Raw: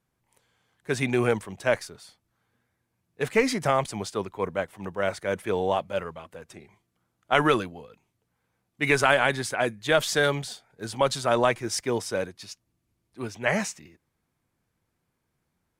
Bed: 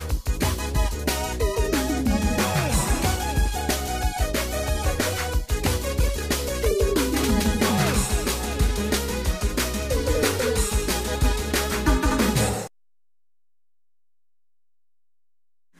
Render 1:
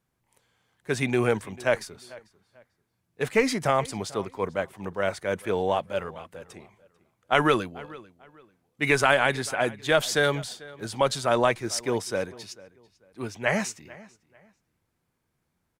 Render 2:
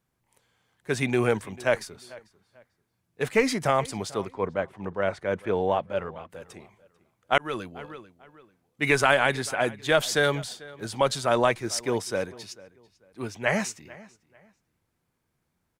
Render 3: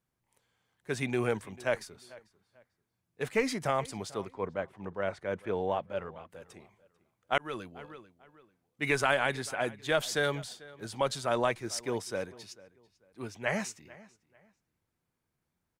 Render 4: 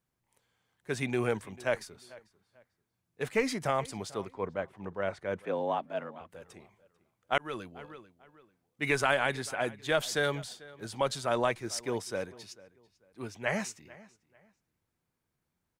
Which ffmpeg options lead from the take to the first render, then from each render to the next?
ffmpeg -i in.wav -filter_complex "[0:a]asplit=2[link_01][link_02];[link_02]adelay=443,lowpass=frequency=3900:poles=1,volume=-20.5dB,asplit=2[link_03][link_04];[link_04]adelay=443,lowpass=frequency=3900:poles=1,volume=0.28[link_05];[link_01][link_03][link_05]amix=inputs=3:normalize=0" out.wav
ffmpeg -i in.wav -filter_complex "[0:a]asettb=1/sr,asplit=3[link_01][link_02][link_03];[link_01]atrim=end=4.324[link_04];[link_02]atrim=start=4.32:end=6.3,asetpts=PTS-STARTPTS,afade=type=in:duration=0.004:curve=qsin,afade=type=out:start_time=1.976:duration=0.004:curve=qsin,aemphasis=mode=reproduction:type=75fm[link_05];[link_03]atrim=start=6.296[link_06];[link_04][link_05]acrossfade=duration=0.004:curve1=hsin:curve2=qsin[link_07];[link_07][link_06]acrossfade=duration=0.004:curve1=qsin:curve2=hsin,asplit=2[link_08][link_09];[link_08]atrim=end=7.38,asetpts=PTS-STARTPTS,afade=type=out:start_time=7.376:duration=0.004:curve=hsin[link_10];[link_09]atrim=start=7.38,asetpts=PTS-STARTPTS,afade=type=in:duration=0.43[link_11];[link_10][link_11]concat=n=2:v=0:a=1" out.wav
ffmpeg -i in.wav -af "volume=-6.5dB" out.wav
ffmpeg -i in.wav -filter_complex "[0:a]asettb=1/sr,asplit=3[link_01][link_02][link_03];[link_01]atrim=end=5.454[link_04];[link_02]atrim=start=5.45:end=6.21,asetpts=PTS-STARTPTS,afade=type=in:duration=0.004:curve=qsin,afade=type=out:start_time=0.756:duration=0.004:curve=qsin,afreqshift=69[link_05];[link_03]atrim=start=6.206[link_06];[link_04][link_05]acrossfade=duration=0.004:curve1=hsin:curve2=qsin[link_07];[link_07][link_06]acrossfade=duration=0.004:curve1=qsin:curve2=hsin" out.wav

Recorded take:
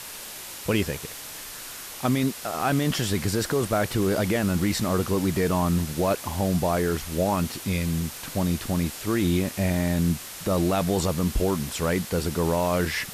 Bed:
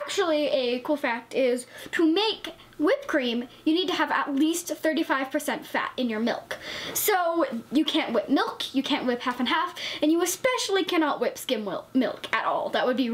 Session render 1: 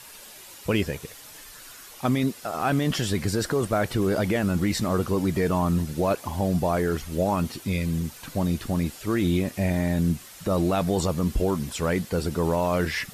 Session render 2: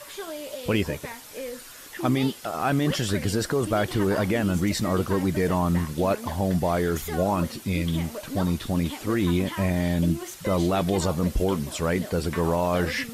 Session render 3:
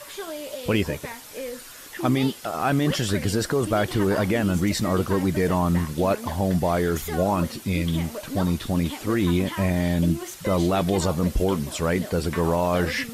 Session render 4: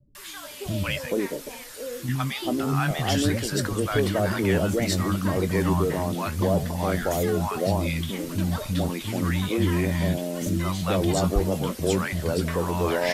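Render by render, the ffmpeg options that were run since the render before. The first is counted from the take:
ffmpeg -i in.wav -af "afftdn=noise_reduction=9:noise_floor=-39" out.wav
ffmpeg -i in.wav -i bed.wav -filter_complex "[1:a]volume=-12dB[link_01];[0:a][link_01]amix=inputs=2:normalize=0" out.wav
ffmpeg -i in.wav -af "volume=1.5dB" out.wav
ffmpeg -i in.wav -filter_complex "[0:a]asplit=2[link_01][link_02];[link_02]adelay=21,volume=-12.5dB[link_03];[link_01][link_03]amix=inputs=2:normalize=0,acrossover=split=220|850[link_04][link_05][link_06];[link_06]adelay=150[link_07];[link_05]adelay=430[link_08];[link_04][link_08][link_07]amix=inputs=3:normalize=0" out.wav

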